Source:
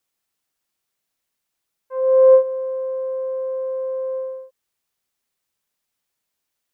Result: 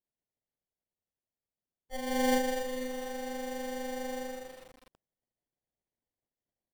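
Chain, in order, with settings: formants replaced by sine waves; inverse Chebyshev high-pass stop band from 460 Hz, stop band 40 dB; in parallel at +2.5 dB: gain riding within 4 dB 2 s; on the sum: ring modulator 270 Hz; sample-rate reducer 1.3 kHz, jitter 0%; on a send: delay 154 ms -6.5 dB; on the sum: bit-crushed delay 244 ms, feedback 55%, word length 9-bit, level -7.5 dB; trim +6.5 dB

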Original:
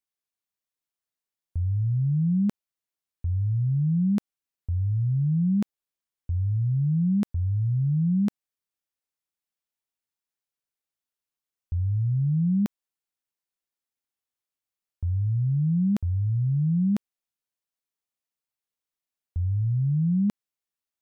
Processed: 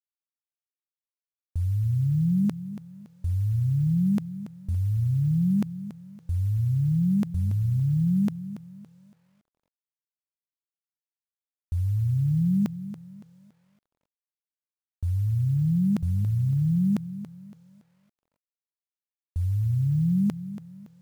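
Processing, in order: bit crusher 9-bit; 1.67–2.45 s: Butterworth band-stop 660 Hz, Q 1.9; bit-crushed delay 282 ms, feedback 35%, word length 10-bit, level -13 dB

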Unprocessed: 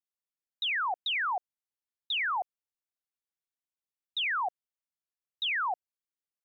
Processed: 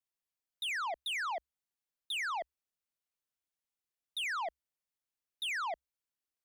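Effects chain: frequency shift -69 Hz; saturation -34 dBFS, distortion -14 dB

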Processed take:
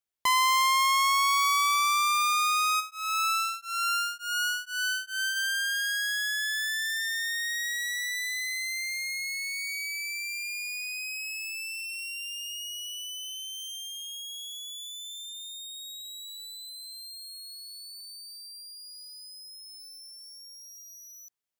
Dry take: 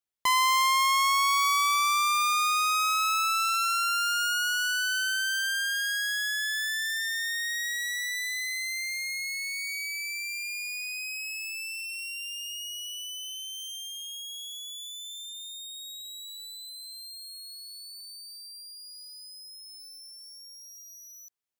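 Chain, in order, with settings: 2.79–5.35 s: tremolo of two beating tones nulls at 1.2 Hz -> 2.9 Hz

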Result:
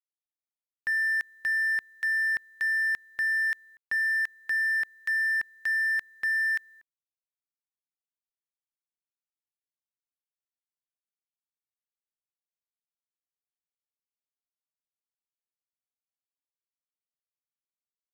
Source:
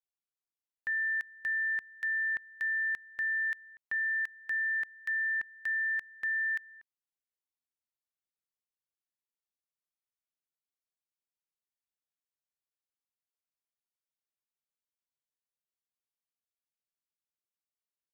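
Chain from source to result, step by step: companding laws mixed up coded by A; trim +6.5 dB

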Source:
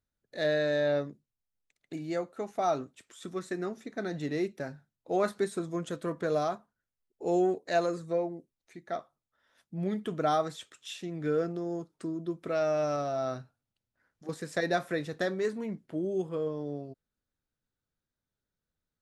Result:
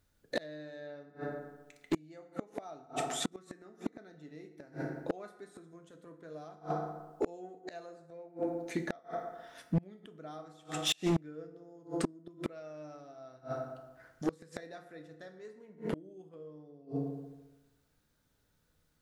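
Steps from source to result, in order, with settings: FDN reverb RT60 1.1 s, low-frequency decay 1×, high-frequency decay 0.6×, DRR 5.5 dB; inverted gate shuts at -29 dBFS, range -33 dB; hard clipper -36.5 dBFS, distortion -12 dB; trim +13 dB

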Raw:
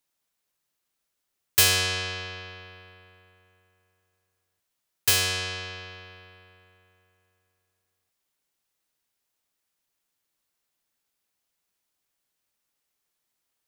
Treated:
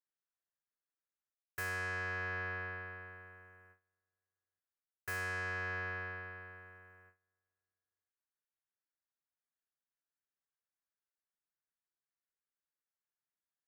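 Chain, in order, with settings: gate with hold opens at -57 dBFS; resonant high shelf 2.4 kHz -12 dB, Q 3; reverse; compression 20:1, threshold -37 dBFS, peak gain reduction 19.5 dB; reverse; trim +1.5 dB

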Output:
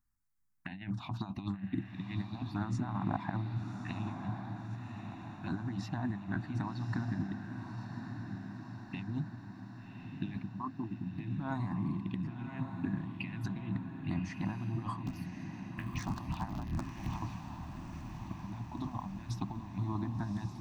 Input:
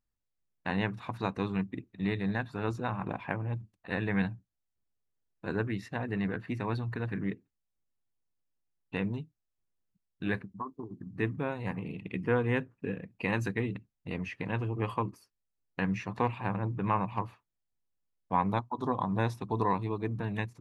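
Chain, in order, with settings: 15.06–17.20 s: cycle switcher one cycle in 3, inverted; Chebyshev band-stop 300–720 Hz, order 2; compressor with a negative ratio -37 dBFS, ratio -0.5; touch-sensitive phaser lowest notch 550 Hz, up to 2.7 kHz, full sweep at -33 dBFS; echo that smears into a reverb 1140 ms, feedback 63%, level -6.5 dB; trim +1 dB

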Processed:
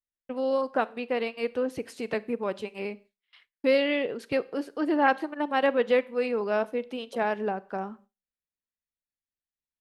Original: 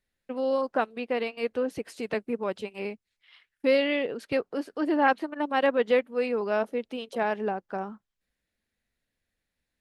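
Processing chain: Schroeder reverb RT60 0.45 s, combs from 31 ms, DRR 19 dB; gate with hold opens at -44 dBFS

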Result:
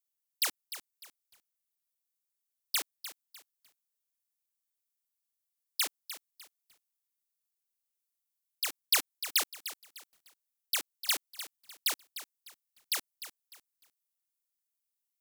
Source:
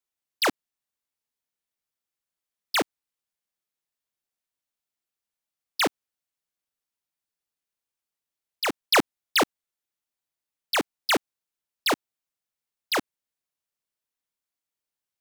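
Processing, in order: pre-emphasis filter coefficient 0.97; bit-crushed delay 301 ms, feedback 35%, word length 8-bit, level -12 dB

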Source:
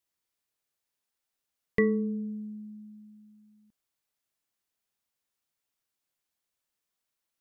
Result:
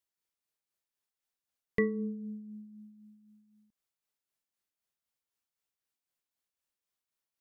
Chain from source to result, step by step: tremolo 3.9 Hz, depth 46%; trim -3.5 dB

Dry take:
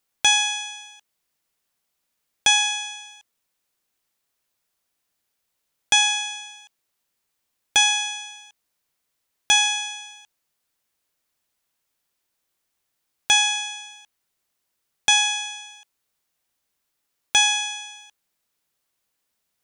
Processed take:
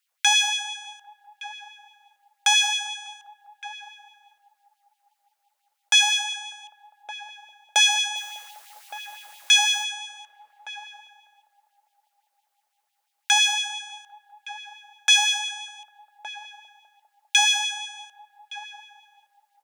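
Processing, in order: dynamic bell 4.8 kHz, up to +4 dB, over -31 dBFS, Q 2.2; in parallel at -8 dB: one-sided clip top -29.5 dBFS, bottom -21 dBFS; 8.15–9.83 s: on the sum: added noise white -46 dBFS; echo from a far wall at 200 m, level -11 dB; LFO high-pass sine 5.9 Hz 600–3100 Hz; on a send: band-passed feedback delay 200 ms, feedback 79%, band-pass 710 Hz, level -16 dB; on the sum: trim -5 dB

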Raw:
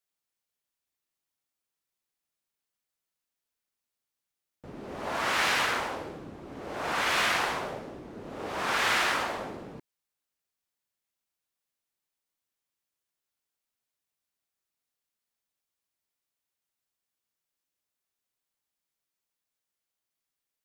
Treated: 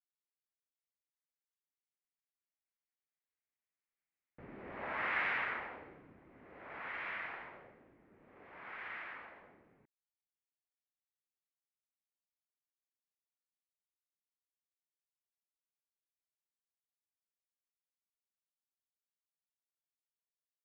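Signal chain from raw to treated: Doppler pass-by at 4.22 s, 23 m/s, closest 17 m; four-pole ladder low-pass 2.4 kHz, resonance 55%; trim +1.5 dB

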